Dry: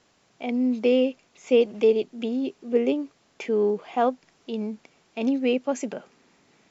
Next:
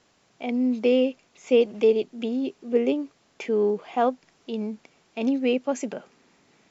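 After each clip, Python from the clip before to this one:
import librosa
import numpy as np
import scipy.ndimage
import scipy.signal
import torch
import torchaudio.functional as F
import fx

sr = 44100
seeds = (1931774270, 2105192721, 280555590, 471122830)

y = x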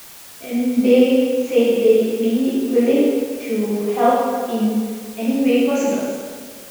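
y = fx.rotary(x, sr, hz=0.65)
y = fx.rev_plate(y, sr, seeds[0], rt60_s=1.8, hf_ratio=0.8, predelay_ms=0, drr_db=-9.0)
y = fx.dmg_noise_colour(y, sr, seeds[1], colour='white', level_db=-40.0)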